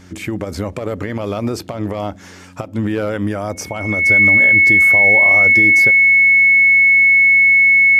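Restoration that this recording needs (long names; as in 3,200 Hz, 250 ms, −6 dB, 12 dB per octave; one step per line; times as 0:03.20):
hum removal 91.2 Hz, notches 3
notch filter 2,200 Hz, Q 30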